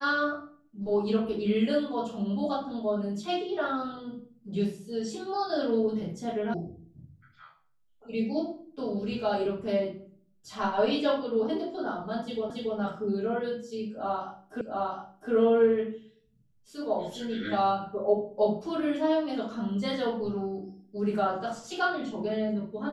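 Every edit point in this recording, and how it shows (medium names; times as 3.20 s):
6.54 s: sound stops dead
12.50 s: repeat of the last 0.28 s
14.61 s: repeat of the last 0.71 s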